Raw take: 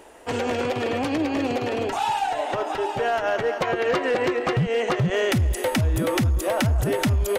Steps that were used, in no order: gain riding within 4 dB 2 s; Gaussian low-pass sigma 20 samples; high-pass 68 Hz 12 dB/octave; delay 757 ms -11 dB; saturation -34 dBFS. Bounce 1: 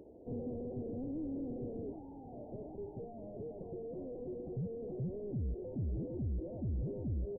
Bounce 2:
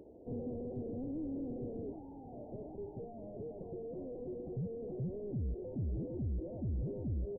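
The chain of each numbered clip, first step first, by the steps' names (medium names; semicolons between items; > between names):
high-pass > saturation > gain riding > delay > Gaussian low-pass; high-pass > saturation > gain riding > Gaussian low-pass > delay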